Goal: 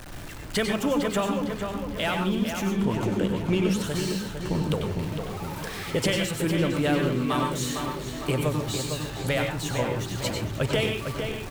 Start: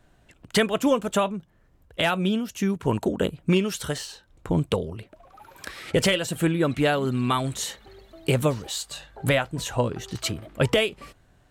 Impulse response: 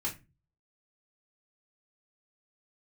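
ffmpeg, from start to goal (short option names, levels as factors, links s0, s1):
-filter_complex "[0:a]aeval=exprs='val(0)+0.5*0.0316*sgn(val(0))':c=same,asettb=1/sr,asplit=3[s0][s1][s2];[s0]atrim=end=2.674[s3];[s1]atrim=start=2.67:end=3.84,asetpts=PTS-STARTPTS,afade=t=in:d=0.004:c=qsin,afade=t=out:st=1.166:d=0.004:c=qsin,highshelf=f=10000:g=-7.5[s4];[s2]atrim=start=3.836[s5];[s3][s4]acrossfade=d=0.004:c1=hsin:c2=qsin[s6];[s6][s5]acrossfade=d=0.004:c1=qsin:c2=hsin,asplit=2[s7][s8];[s8]adelay=455,lowpass=f=3700:p=1,volume=0.501,asplit=2[s9][s10];[s10]adelay=455,lowpass=f=3700:p=1,volume=0.54,asplit=2[s11][s12];[s12]adelay=455,lowpass=f=3700:p=1,volume=0.54,asplit=2[s13][s14];[s14]adelay=455,lowpass=f=3700:p=1,volume=0.54,asplit=2[s15][s16];[s16]adelay=455,lowpass=f=3700:p=1,volume=0.54,asplit=2[s17][s18];[s18]adelay=455,lowpass=f=3700:p=1,volume=0.54,asplit=2[s19][s20];[s20]adelay=455,lowpass=f=3700:p=1,volume=0.54[s21];[s7][s9][s11][s13][s15][s17][s19][s21]amix=inputs=8:normalize=0,asplit=2[s22][s23];[1:a]atrim=start_sample=2205,adelay=93[s24];[s23][s24]afir=irnorm=-1:irlink=0,volume=0.473[s25];[s22][s25]amix=inputs=2:normalize=0,volume=0.501"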